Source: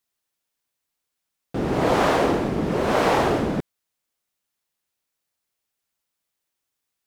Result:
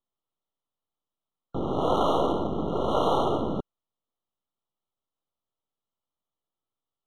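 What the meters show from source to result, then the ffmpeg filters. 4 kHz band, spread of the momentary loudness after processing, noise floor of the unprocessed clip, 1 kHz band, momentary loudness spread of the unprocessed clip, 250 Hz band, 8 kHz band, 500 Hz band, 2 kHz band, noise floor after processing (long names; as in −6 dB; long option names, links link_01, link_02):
−4.5 dB, 9 LU, −82 dBFS, −3.5 dB, 9 LU, −5.5 dB, below −10 dB, −4.0 dB, below −25 dB, below −85 dBFS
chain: -filter_complex "[0:a]aeval=exprs='if(lt(val(0),0),0.251*val(0),val(0))':channel_layout=same,lowpass=frequency=4700:width=0.5412,lowpass=frequency=4700:width=1.3066,acrossover=split=320[link_01][link_02];[link_01]alimiter=limit=-24dB:level=0:latency=1[link_03];[link_03][link_02]amix=inputs=2:normalize=0,adynamicsmooth=sensitivity=7:basefreq=3200,afftfilt=real='re*eq(mod(floor(b*sr/1024/1400),2),0)':imag='im*eq(mod(floor(b*sr/1024/1400),2),0)':win_size=1024:overlap=0.75"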